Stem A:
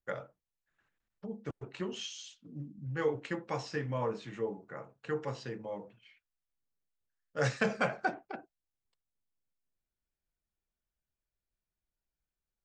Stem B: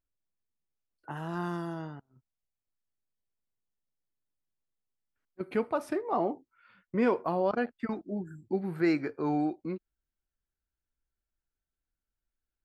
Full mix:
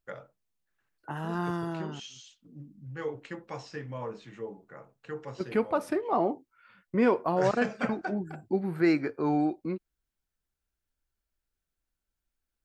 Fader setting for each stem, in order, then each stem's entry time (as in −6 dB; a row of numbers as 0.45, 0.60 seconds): −3.5, +2.5 decibels; 0.00, 0.00 seconds